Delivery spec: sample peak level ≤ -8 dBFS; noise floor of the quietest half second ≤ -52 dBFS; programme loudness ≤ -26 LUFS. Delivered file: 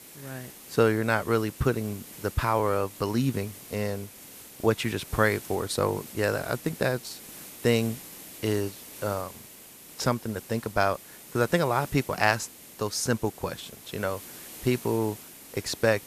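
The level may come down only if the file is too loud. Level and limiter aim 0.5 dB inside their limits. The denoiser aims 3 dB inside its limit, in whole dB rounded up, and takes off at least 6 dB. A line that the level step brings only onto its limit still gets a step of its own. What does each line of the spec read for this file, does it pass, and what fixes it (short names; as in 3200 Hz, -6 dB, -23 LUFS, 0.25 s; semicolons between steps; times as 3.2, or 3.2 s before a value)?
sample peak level -6.0 dBFS: fail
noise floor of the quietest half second -48 dBFS: fail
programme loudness -28.0 LUFS: OK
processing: denoiser 7 dB, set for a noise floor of -48 dBFS; limiter -8.5 dBFS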